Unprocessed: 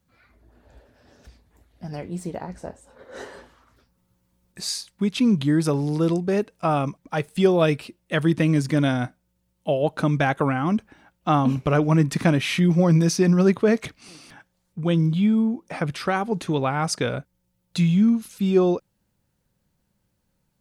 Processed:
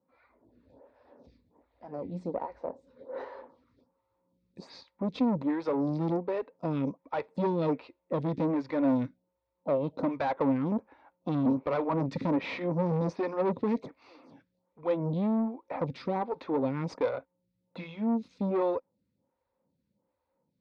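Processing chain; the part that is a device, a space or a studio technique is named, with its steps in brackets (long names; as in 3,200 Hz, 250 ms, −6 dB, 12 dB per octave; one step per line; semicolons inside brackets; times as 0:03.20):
vibe pedal into a guitar amplifier (phaser with staggered stages 1.3 Hz; tube saturation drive 25 dB, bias 0.55; loudspeaker in its box 83–4,000 Hz, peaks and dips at 130 Hz −3 dB, 270 Hz +8 dB, 520 Hz +10 dB, 950 Hz +9 dB, 1,600 Hz −6 dB, 3,000 Hz −10 dB)
level −2.5 dB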